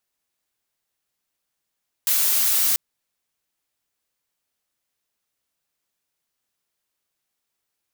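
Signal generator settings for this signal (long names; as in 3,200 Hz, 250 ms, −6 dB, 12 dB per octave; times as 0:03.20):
noise blue, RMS −19.5 dBFS 0.69 s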